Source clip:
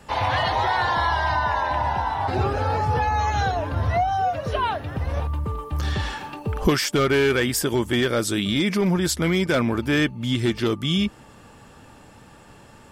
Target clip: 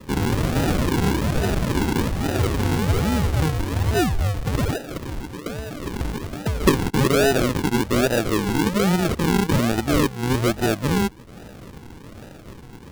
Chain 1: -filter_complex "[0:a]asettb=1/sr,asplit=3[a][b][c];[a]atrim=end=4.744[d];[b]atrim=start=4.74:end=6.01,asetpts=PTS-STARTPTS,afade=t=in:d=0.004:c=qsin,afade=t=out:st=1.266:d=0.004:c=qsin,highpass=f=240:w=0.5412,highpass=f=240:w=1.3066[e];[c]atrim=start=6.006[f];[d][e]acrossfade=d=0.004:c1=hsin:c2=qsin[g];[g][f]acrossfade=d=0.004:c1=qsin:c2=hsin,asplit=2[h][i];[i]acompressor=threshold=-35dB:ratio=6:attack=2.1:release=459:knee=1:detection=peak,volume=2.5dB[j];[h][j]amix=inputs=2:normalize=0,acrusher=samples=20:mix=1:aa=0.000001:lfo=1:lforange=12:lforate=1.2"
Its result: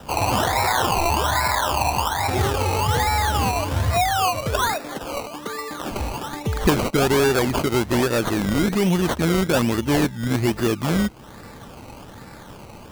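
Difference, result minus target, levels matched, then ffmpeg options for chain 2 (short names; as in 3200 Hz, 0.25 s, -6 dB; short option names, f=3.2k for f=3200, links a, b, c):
decimation with a swept rate: distortion -9 dB
-filter_complex "[0:a]asettb=1/sr,asplit=3[a][b][c];[a]atrim=end=4.744[d];[b]atrim=start=4.74:end=6.01,asetpts=PTS-STARTPTS,afade=t=in:d=0.004:c=qsin,afade=t=out:st=1.266:d=0.004:c=qsin,highpass=f=240:w=0.5412,highpass=f=240:w=1.3066[e];[c]atrim=start=6.006[f];[d][e]acrossfade=d=0.004:c1=hsin:c2=qsin[g];[g][f]acrossfade=d=0.004:c1=qsin:c2=hsin,asplit=2[h][i];[i]acompressor=threshold=-35dB:ratio=6:attack=2.1:release=459:knee=1:detection=peak,volume=2.5dB[j];[h][j]amix=inputs=2:normalize=0,acrusher=samples=57:mix=1:aa=0.000001:lfo=1:lforange=34.2:lforate=1.2"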